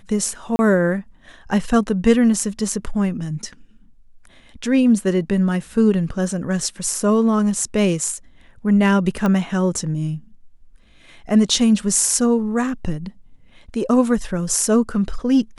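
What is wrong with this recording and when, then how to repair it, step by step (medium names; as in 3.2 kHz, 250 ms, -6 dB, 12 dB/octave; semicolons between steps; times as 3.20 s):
0.56–0.59 s: dropout 30 ms
9.26 s: pop -10 dBFS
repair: de-click; interpolate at 0.56 s, 30 ms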